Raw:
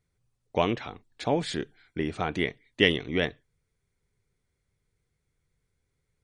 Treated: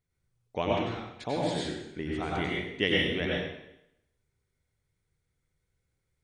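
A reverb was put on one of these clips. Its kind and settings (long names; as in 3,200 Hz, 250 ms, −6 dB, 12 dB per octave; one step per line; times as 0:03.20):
dense smooth reverb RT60 0.81 s, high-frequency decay 0.95×, pre-delay 80 ms, DRR −4 dB
level −7 dB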